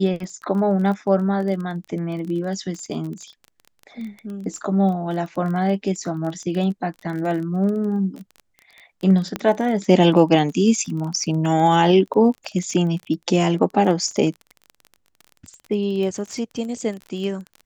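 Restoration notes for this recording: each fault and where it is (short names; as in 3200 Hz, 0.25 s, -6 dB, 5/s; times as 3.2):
crackle 23/s -29 dBFS
9.36 pop -10 dBFS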